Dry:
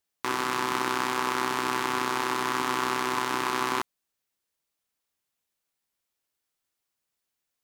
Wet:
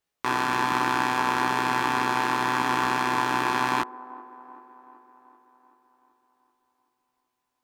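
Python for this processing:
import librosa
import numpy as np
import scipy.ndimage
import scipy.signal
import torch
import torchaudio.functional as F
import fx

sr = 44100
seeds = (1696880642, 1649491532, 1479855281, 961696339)

y = fx.high_shelf(x, sr, hz=3900.0, db=-9.0)
y = fx.doubler(y, sr, ms=17.0, db=-2.5)
y = fx.echo_wet_bandpass(y, sr, ms=383, feedback_pct=59, hz=590.0, wet_db=-17)
y = F.gain(torch.from_numpy(y), 3.0).numpy()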